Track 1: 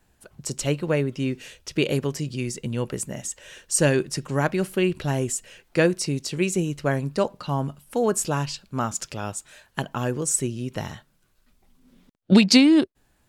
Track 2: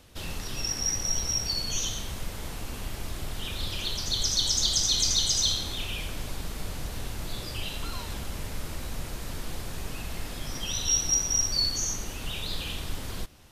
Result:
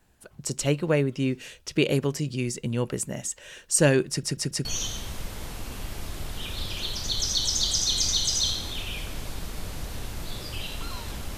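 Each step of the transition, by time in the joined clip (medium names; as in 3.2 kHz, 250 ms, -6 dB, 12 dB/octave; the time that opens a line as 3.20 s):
track 1
4.09 s: stutter in place 0.14 s, 4 plays
4.65 s: go over to track 2 from 1.67 s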